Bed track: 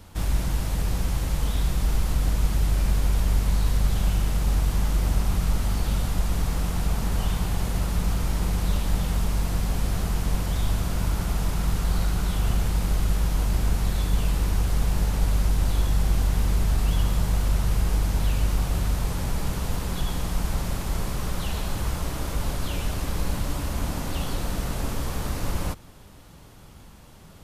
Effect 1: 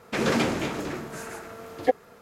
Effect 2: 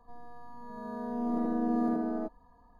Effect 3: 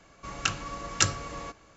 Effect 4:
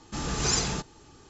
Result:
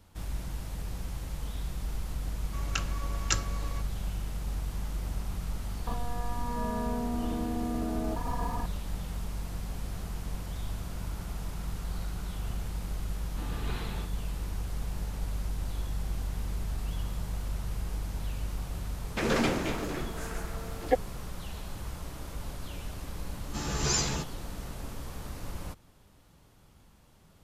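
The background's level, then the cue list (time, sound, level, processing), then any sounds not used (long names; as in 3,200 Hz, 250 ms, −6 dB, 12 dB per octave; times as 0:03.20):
bed track −11.5 dB
0:02.30: mix in 3 −5.5 dB
0:05.87: mix in 2 −6 dB + envelope flattener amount 100%
0:13.24: mix in 4 −10 dB + Butterworth low-pass 4,100 Hz 72 dB per octave
0:19.04: mix in 1 −3.5 dB
0:23.41: mix in 4 −4 dB + double-tracking delay 14 ms −3.5 dB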